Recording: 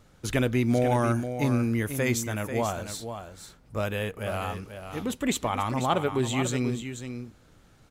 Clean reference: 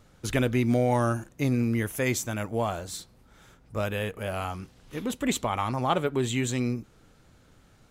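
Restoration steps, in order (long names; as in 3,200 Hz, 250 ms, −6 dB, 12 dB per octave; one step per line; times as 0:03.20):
echo removal 490 ms −9 dB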